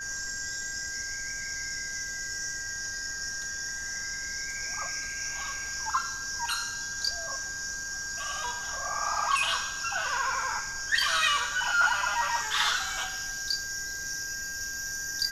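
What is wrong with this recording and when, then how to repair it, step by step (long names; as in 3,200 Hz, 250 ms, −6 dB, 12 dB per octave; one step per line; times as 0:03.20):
whistle 1,600 Hz −36 dBFS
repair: notch filter 1,600 Hz, Q 30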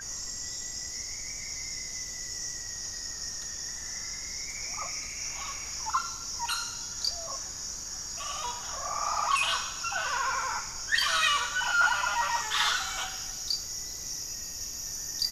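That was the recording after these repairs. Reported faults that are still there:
none of them is left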